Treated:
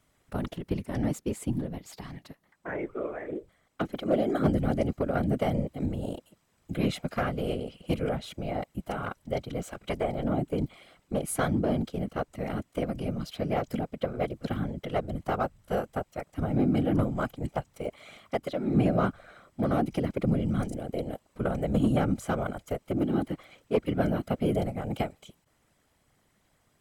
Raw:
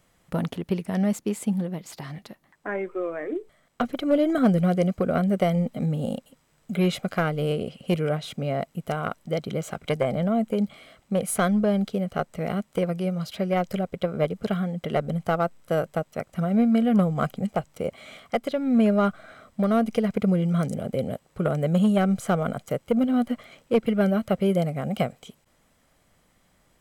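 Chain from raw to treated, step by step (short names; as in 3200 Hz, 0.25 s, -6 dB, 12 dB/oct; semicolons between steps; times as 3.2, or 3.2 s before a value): whisperiser; gain -5 dB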